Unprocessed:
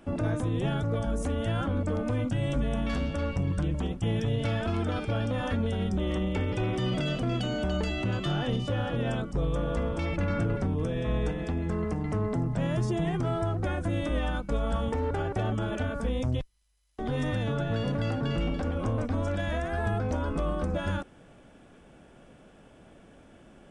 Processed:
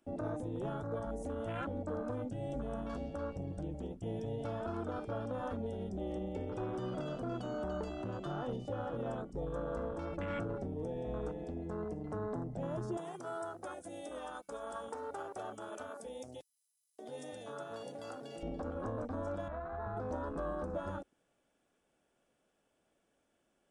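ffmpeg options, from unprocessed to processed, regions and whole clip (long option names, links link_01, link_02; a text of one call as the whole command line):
ffmpeg -i in.wav -filter_complex "[0:a]asettb=1/sr,asplit=3[link_01][link_02][link_03];[link_01]atrim=end=12.974[link_04];[link_02]atrim=start=12.97:end=18.43,asetpts=PTS-STARTPTS,afade=type=in:duration=0.004:curve=qsin,afade=type=out:start_time=5.456:duration=0.004:curve=qsin,highpass=frequency=620:poles=1,aemphasis=mode=production:type=75fm[link_05];[link_03]atrim=start=18.426[link_06];[link_04][link_05]acrossfade=duration=0.004:curve1=hsin:curve2=qsin[link_07];[link_07][link_06]acrossfade=duration=0.004:curve1=qsin:curve2=hsin,asettb=1/sr,asplit=3[link_08][link_09][link_10];[link_08]atrim=end=19.484[link_11];[link_09]atrim=start=19.48:end=19.97,asetpts=PTS-STARTPTS,afade=type=in:duration=0.004:curve=qsin,afade=type=out:start_time=0.486:duration=0.004:curve=qsin,lowpass=frequency=2200:width=0.5412,lowpass=frequency=2200:width=1.3066,equalizer=frequency=340:width_type=o:width=1.5:gain=-7.5[link_12];[link_10]atrim=start=19.966[link_13];[link_11][link_12]acrossfade=duration=0.004:curve1=hsin:curve2=qsin[link_14];[link_14][link_13]acrossfade=duration=0.004:curve1=qsin:curve2=hsin,afwtdn=0.02,bass=frequency=250:gain=-10,treble=frequency=4000:gain=8,volume=-5dB" out.wav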